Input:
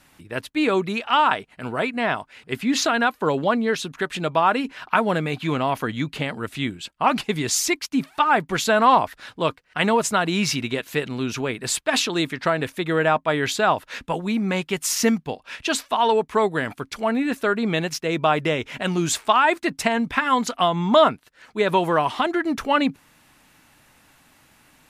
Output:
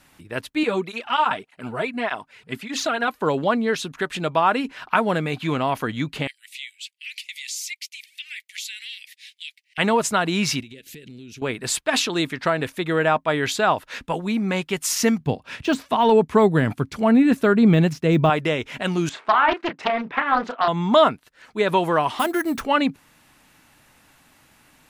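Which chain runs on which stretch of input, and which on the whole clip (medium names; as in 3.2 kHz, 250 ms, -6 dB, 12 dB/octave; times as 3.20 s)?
0.63–3.08 s: de-esser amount 40% + cancelling through-zero flanger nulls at 1.7 Hz, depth 4 ms
6.27–9.78 s: steep high-pass 2 kHz 72 dB/octave + compression 3:1, threshold -30 dBFS
10.60–11.42 s: Butterworth band-stop 970 Hz, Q 0.56 + compression 12:1, threshold -37 dBFS
15.20–18.30 s: high-pass 52 Hz + peaking EQ 120 Hz +13 dB 2.8 oct + de-esser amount 75%
19.09–20.68 s: band-pass 280–2100 Hz + doubling 32 ms -8 dB + loudspeaker Doppler distortion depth 0.51 ms
22.19–22.61 s: de-hum 247.1 Hz, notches 2 + sample-rate reducer 12 kHz
whole clip: none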